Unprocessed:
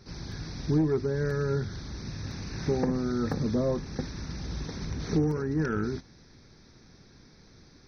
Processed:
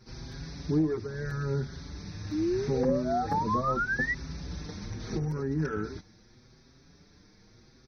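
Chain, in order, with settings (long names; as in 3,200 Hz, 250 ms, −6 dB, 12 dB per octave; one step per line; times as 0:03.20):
sound drawn into the spectrogram rise, 0:02.31–0:04.14, 290–2,000 Hz −27 dBFS
barber-pole flanger 5.9 ms +0.79 Hz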